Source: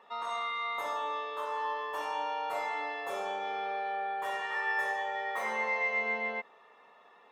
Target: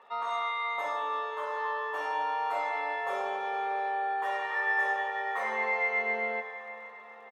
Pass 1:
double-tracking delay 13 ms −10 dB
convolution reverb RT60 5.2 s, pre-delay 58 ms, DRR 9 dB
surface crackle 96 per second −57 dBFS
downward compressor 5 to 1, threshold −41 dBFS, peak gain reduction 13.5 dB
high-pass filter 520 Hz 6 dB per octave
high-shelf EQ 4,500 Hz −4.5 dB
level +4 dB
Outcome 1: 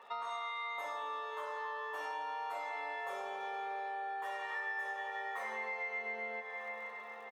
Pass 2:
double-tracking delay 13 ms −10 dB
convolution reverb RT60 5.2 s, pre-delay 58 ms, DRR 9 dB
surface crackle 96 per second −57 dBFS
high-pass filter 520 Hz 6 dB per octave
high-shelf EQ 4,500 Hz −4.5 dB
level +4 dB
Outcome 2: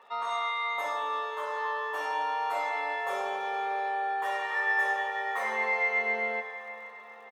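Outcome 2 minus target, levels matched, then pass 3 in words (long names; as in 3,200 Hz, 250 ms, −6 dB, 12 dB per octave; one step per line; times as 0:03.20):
8,000 Hz band +5.5 dB
double-tracking delay 13 ms −10 dB
convolution reverb RT60 5.2 s, pre-delay 58 ms, DRR 9 dB
surface crackle 96 per second −57 dBFS
high-pass filter 520 Hz 6 dB per octave
high-shelf EQ 4,500 Hz −13.5 dB
level +4 dB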